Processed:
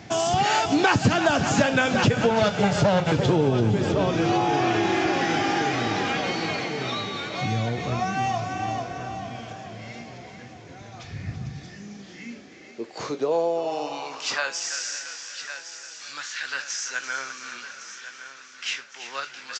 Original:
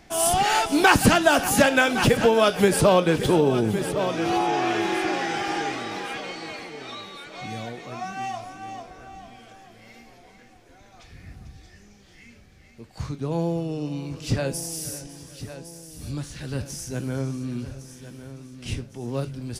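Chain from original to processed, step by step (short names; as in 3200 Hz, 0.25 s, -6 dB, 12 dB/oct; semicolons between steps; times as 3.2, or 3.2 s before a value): 2.3–3.12 minimum comb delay 1.4 ms; on a send: frequency-shifting echo 0.337 s, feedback 50%, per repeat -34 Hz, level -11.5 dB; on the sum: high-pass sweep 110 Hz -> 1500 Hz, 11.26–14.73; compressor 2.5:1, threshold -30 dBFS, peak gain reduction 14.5 dB; downsampling 16000 Hz; gain +7.5 dB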